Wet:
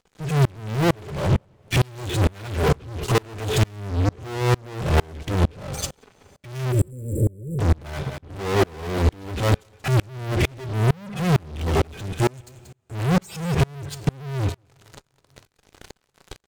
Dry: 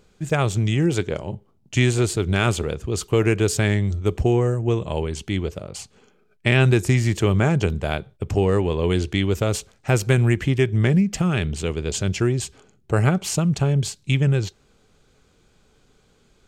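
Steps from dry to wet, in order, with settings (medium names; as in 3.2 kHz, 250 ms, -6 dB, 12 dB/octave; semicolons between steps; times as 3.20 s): harmonic-percussive separation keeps harmonic; 1.77–2.74 s: high-pass 58 Hz 24 dB/octave; 12.05–12.95 s: pre-emphasis filter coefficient 0.8; compression 1.5:1, threshold -36 dBFS, peak gain reduction 8 dB; fuzz box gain 50 dB, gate -55 dBFS; 6.72–7.59 s: brick-wall FIR band-stop 600–7200 Hz; delay 183 ms -17 dB; two-slope reverb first 0.28 s, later 3.2 s, from -18 dB, DRR 15 dB; sawtooth tremolo in dB swelling 2.2 Hz, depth 33 dB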